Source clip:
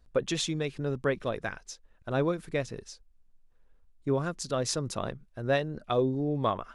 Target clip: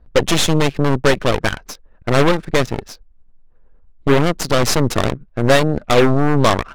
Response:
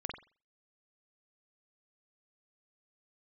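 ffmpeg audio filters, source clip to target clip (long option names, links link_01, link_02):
-af "apsyclip=18dB,aeval=exprs='1.06*(cos(1*acos(clip(val(0)/1.06,-1,1)))-cos(1*PI/2))+0.266*(cos(8*acos(clip(val(0)/1.06,-1,1)))-cos(8*PI/2))':channel_layout=same,adynamicsmooth=sensitivity=5.5:basefreq=1600,volume=-5dB"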